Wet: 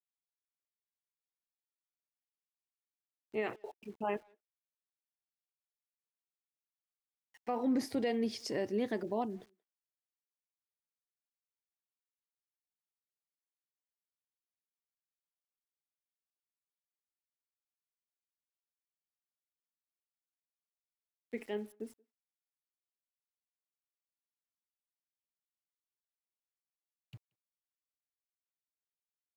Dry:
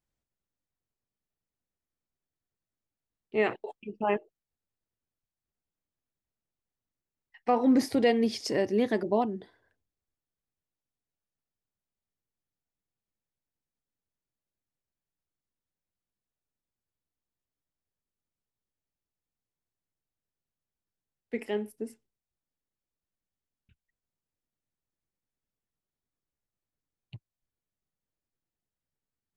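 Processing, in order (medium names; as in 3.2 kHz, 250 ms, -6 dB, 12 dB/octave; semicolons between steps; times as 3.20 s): peak limiter -17.5 dBFS, peak gain reduction 4.5 dB; small samples zeroed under -52 dBFS; speakerphone echo 180 ms, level -28 dB; trim -7 dB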